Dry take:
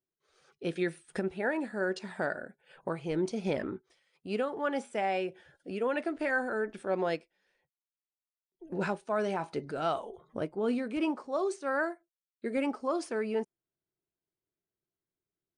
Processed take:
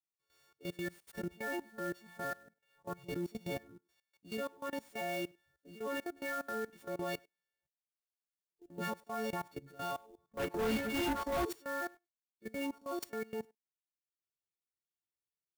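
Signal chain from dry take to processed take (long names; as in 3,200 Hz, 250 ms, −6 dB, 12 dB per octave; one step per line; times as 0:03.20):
every partial snapped to a pitch grid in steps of 4 semitones
output level in coarse steps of 16 dB
0:10.37–0:11.45: mid-hump overdrive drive 34 dB, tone 2,500 Hz, clips at −21.5 dBFS
parametric band 70 Hz +12 dB 2.2 octaves
transient designer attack −4 dB, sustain −8 dB
far-end echo of a speakerphone 100 ms, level −26 dB
converter with an unsteady clock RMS 0.024 ms
level −5.5 dB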